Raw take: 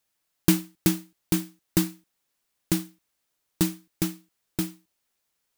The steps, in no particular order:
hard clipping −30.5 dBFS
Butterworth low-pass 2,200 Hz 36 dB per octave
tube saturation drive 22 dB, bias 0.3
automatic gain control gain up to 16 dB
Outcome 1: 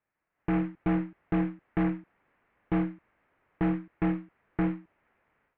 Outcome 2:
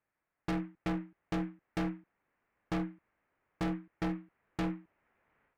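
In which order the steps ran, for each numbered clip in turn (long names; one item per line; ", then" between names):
hard clipping, then automatic gain control, then tube saturation, then Butterworth low-pass
automatic gain control, then Butterworth low-pass, then tube saturation, then hard clipping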